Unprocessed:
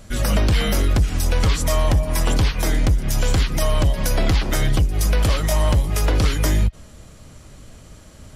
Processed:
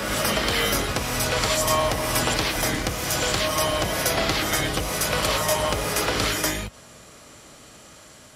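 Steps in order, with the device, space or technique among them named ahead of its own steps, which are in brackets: ghost voice (reverse; reverberation RT60 2.7 s, pre-delay 46 ms, DRR 0.5 dB; reverse; high-pass 640 Hz 6 dB/octave); trim +2 dB

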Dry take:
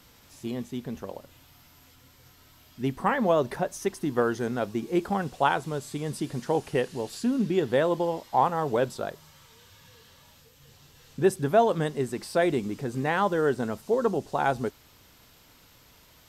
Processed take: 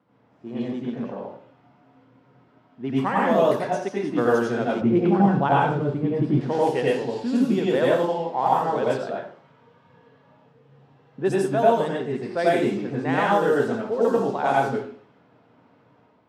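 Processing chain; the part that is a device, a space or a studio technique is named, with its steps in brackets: far laptop microphone (reverberation RT60 0.50 s, pre-delay 84 ms, DRR -5 dB; high-pass 150 Hz 12 dB/octave; level rider gain up to 4.5 dB); level-controlled noise filter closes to 1 kHz, open at -10.5 dBFS; 4.81–6.41 s: RIAA curve playback; high-pass 96 Hz; trim -5 dB

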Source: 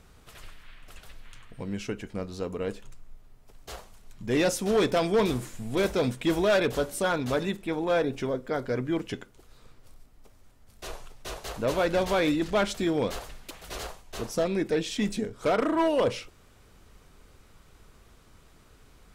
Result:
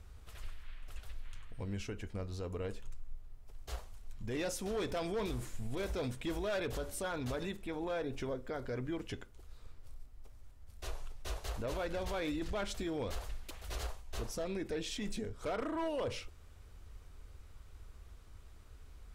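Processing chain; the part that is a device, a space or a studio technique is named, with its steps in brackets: car stereo with a boomy subwoofer (resonant low shelf 110 Hz +9.5 dB, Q 1.5; peak limiter -23.5 dBFS, peak gain reduction 8.5 dB); trim -6.5 dB

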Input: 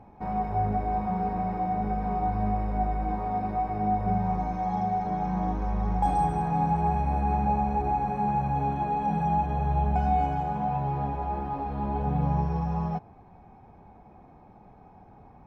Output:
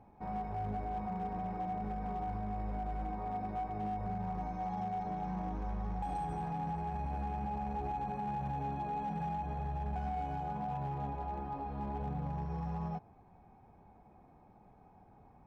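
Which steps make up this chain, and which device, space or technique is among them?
limiter into clipper (peak limiter -21 dBFS, peak gain reduction 7.5 dB; hard clipper -23 dBFS, distortion -25 dB); trim -8.5 dB

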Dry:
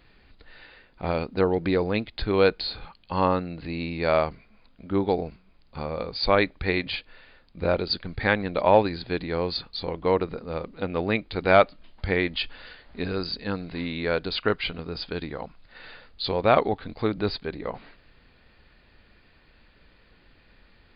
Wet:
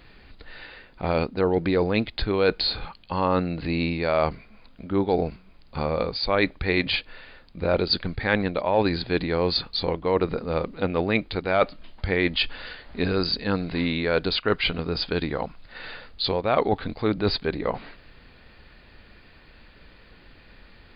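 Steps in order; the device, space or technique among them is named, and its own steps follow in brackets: compression on the reversed sound (reverse; compression 5:1, threshold -25 dBFS, peak gain reduction 12.5 dB; reverse); trim +6.5 dB

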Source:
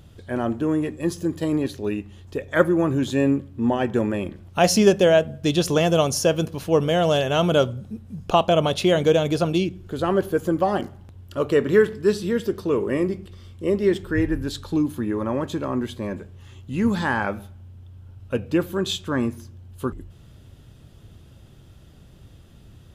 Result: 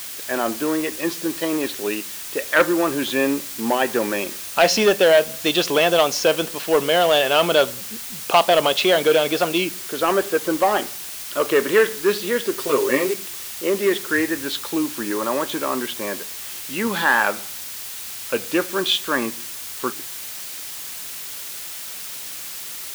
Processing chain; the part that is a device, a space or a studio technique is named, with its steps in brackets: tape answering machine (band-pass 320–3300 Hz; saturation -12 dBFS, distortion -17 dB; wow and flutter; white noise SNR 19 dB); tilt shelf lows -5.5 dB, about 1.1 kHz; 12.58–13.14 s: comb 7.5 ms, depth 75%; trim +7.5 dB

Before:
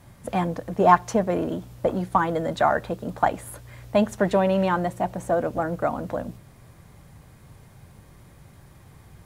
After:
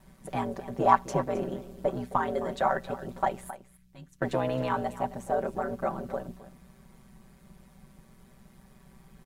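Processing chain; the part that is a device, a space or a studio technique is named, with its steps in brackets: 3.50–4.22 s: amplifier tone stack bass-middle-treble 6-0-2; delay 265 ms -15.5 dB; ring-modulated robot voice (ring modulator 63 Hz; comb 5.2 ms); trim -4.5 dB

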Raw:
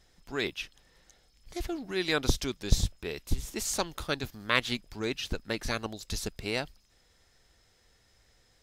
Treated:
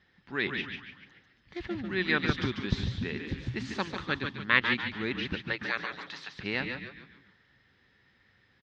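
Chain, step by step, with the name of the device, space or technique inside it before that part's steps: 5.44–6.34 s: high-pass 340 Hz -> 800 Hz 24 dB/octave; feedback delay 148 ms, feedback 22%, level -8.5 dB; frequency-shifting delay pedal into a guitar cabinet (frequency-shifting echo 142 ms, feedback 42%, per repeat -140 Hz, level -8 dB; cabinet simulation 96–3700 Hz, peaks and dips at 190 Hz +5 dB, 460 Hz -4 dB, 660 Hz -9 dB, 1.8 kHz +8 dB)

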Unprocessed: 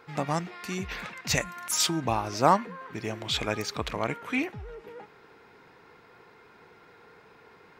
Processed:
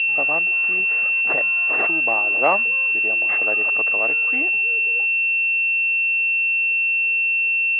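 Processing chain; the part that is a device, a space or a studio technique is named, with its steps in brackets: toy sound module (decimation joined by straight lines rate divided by 8×; class-D stage that switches slowly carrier 2.7 kHz; cabinet simulation 550–3600 Hz, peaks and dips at 950 Hz -9 dB, 1.4 kHz -3 dB, 2.1 kHz +4 dB, 3 kHz +6 dB); trim +8 dB

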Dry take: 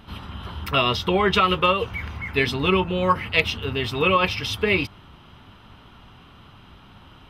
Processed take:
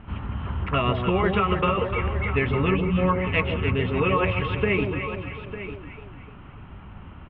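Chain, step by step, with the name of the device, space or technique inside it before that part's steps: steep low-pass 2.6 kHz 36 dB/octave; time-frequency box 2.76–2.98 s, 270–2200 Hz -25 dB; ASMR close-microphone chain (bass shelf 180 Hz +7 dB; compression, threshold -19 dBFS, peak gain reduction 7 dB; treble shelf 8.1 kHz +7 dB); echo whose repeats swap between lows and highs 149 ms, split 840 Hz, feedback 65%, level -4 dB; delay 901 ms -12.5 dB

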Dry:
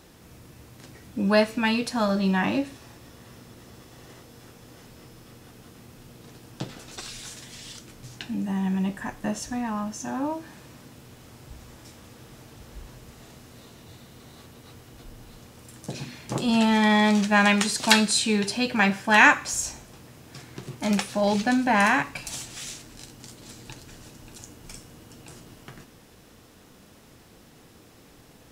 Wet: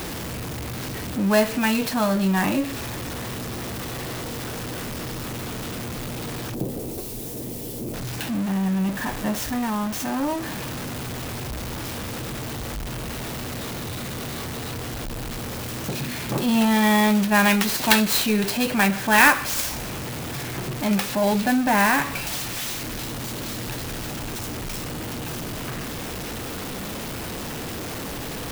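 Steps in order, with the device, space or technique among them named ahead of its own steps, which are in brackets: early CD player with a faulty converter (jump at every zero crossing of -26 dBFS; sampling jitter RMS 0.033 ms); 6.54–7.94 s: FFT filter 140 Hz 0 dB, 430 Hz +6 dB, 1.5 kHz -19 dB, 2.3 kHz -15 dB, 3.8 kHz -14 dB, 11 kHz -2 dB

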